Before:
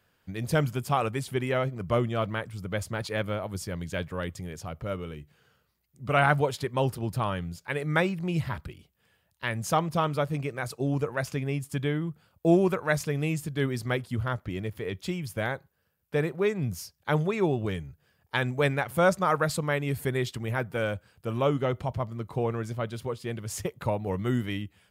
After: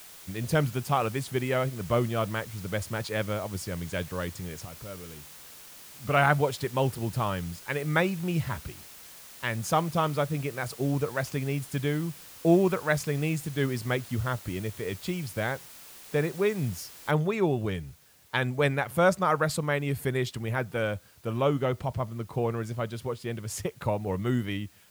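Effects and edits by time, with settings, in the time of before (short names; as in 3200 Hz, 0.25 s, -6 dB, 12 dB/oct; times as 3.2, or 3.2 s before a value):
4.65–6.05 compressor 1.5:1, threshold -52 dBFS
17.11 noise floor step -48 dB -60 dB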